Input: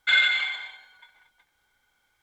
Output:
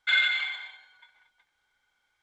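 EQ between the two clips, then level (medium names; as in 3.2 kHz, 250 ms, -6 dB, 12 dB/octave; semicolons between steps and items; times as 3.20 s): distance through air 51 m; tilt shelf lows -3.5 dB, about 640 Hz; -5.5 dB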